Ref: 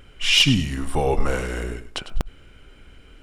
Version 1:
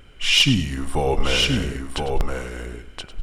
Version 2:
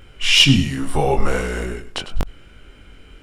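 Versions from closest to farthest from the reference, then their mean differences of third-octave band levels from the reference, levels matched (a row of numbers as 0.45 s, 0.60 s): 2, 1; 1.5 dB, 5.5 dB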